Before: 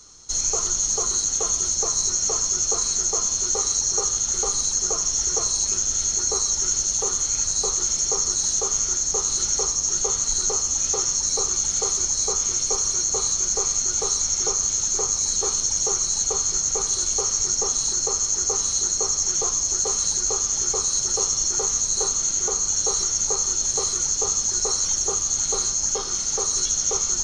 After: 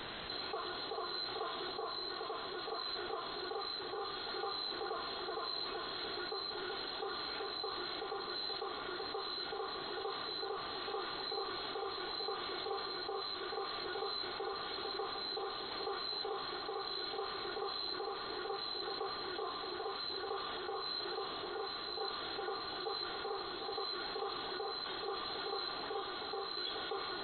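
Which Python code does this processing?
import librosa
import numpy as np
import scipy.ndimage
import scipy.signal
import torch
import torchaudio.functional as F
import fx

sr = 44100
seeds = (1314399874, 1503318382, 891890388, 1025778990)

y = fx.dynamic_eq(x, sr, hz=360.0, q=0.76, threshold_db=-44.0, ratio=4.0, max_db=-7)
y = fx.ladder_highpass(y, sr, hz=280.0, resonance_pct=25)
y = y + 0.61 * np.pad(y, (int(2.7 * sr / 1000.0), 0))[:len(y)]
y = fx.quant_dither(y, sr, seeds[0], bits=8, dither='triangular')
y = fx.tremolo_random(y, sr, seeds[1], hz=3.5, depth_pct=55)
y = fx.brickwall_lowpass(y, sr, high_hz=4200.0)
y = fx.peak_eq(y, sr, hz=2400.0, db=-8.0, octaves=0.5)
y = fx.echo_alternate(y, sr, ms=378, hz=1200.0, feedback_pct=51, wet_db=-5.0)
y = fx.env_flatten(y, sr, amount_pct=70)
y = y * 10.0 ** (-4.5 / 20.0)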